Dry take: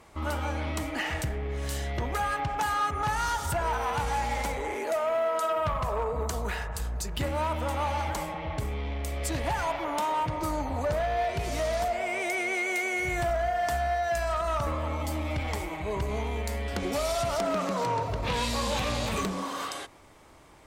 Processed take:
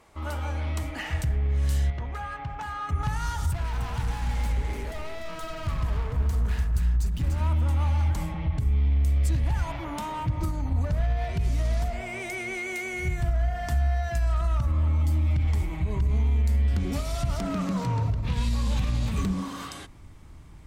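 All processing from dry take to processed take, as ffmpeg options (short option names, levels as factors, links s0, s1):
-filter_complex "[0:a]asettb=1/sr,asplit=3[s0][s1][s2];[s0]atrim=end=1.904[s3];[s1]atrim=start=1.9:end=2.89,asetpts=PTS-STARTPTS,afade=t=in:d=0.004:c=qsin,afade=t=out:st=0.986:d=0.004:c=qsin,lowpass=f=1900:p=1,lowshelf=f=320:g=-11[s4];[s2]atrim=start=2.886[s5];[s3][s4]acrossfade=d=0.004:c1=hsin:c2=qsin[s6];[s6][s5]acrossfade=d=0.004:c1=qsin:c2=hsin,asettb=1/sr,asplit=3[s7][s8][s9];[s7]atrim=end=3.514[s10];[s8]atrim=start=3.51:end=7.41,asetpts=PTS-STARTPTS,afade=t=in:d=0.004:c=qsin,afade=t=out:st=3.896:d=0.004:c=qsin,asoftclip=type=hard:threshold=0.0251,aecho=1:1:295:0.447,atrim=end_sample=171990[s11];[s9]atrim=start=7.406[s12];[s10][s11]acrossfade=d=0.004:c1=hsin:c2=qsin[s13];[s13][s12]acrossfade=d=0.004:c1=qsin:c2=hsin,asubboost=boost=9.5:cutoff=170,alimiter=limit=0.188:level=0:latency=1:release=103,bandreject=f=50:t=h:w=6,bandreject=f=100:t=h:w=6,bandreject=f=150:t=h:w=6,bandreject=f=200:t=h:w=6,bandreject=f=250:t=h:w=6,bandreject=f=300:t=h:w=6,bandreject=f=350:t=h:w=6,volume=0.708"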